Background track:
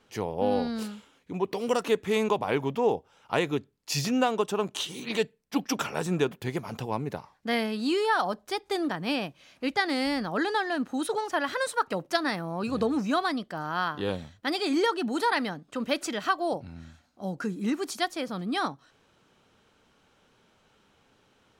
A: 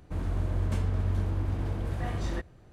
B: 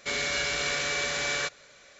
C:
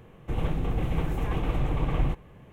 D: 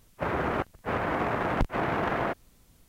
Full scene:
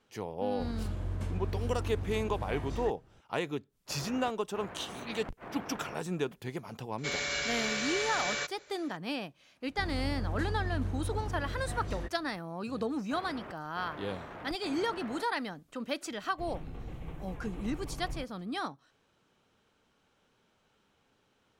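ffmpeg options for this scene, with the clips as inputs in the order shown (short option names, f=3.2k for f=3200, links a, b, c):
-filter_complex "[1:a]asplit=2[a][b];[4:a]asplit=2[c][d];[0:a]volume=-7dB[e];[a]aresample=32000,aresample=44100[f];[d]asoftclip=type=tanh:threshold=-24dB[g];[f]atrim=end=2.72,asetpts=PTS-STARTPTS,volume=-6.5dB,afade=t=in:d=0.004:c=hsin,afade=t=out:st=2.716:d=0.004:c=hsin,adelay=490[h];[c]atrim=end=2.88,asetpts=PTS-STARTPTS,volume=-16.5dB,afade=t=in:d=0.1,afade=t=out:st=2.78:d=0.1,adelay=3680[i];[2:a]atrim=end=1.99,asetpts=PTS-STARTPTS,volume=-4.5dB,afade=t=in:d=0.004:c=hsin,afade=t=out:st=1.986:d=0.004:c=hsin,adelay=307818S[j];[b]atrim=end=2.72,asetpts=PTS-STARTPTS,volume=-6dB,afade=t=in:d=0.004:c=hsin,afade=t=out:st=2.716:d=0.004:c=hsin,adelay=9670[k];[g]atrim=end=2.88,asetpts=PTS-STARTPTS,volume=-14.5dB,afade=t=in:d=0.004:c=hsin,afade=t=out:st=2.876:d=0.004:c=hsin,adelay=12900[l];[3:a]atrim=end=2.52,asetpts=PTS-STARTPTS,volume=-15dB,afade=t=in:d=0.004:c=hsin,afade=t=out:st=2.516:d=0.004:c=hsin,adelay=16100[m];[e][h][i][j][k][l][m]amix=inputs=7:normalize=0"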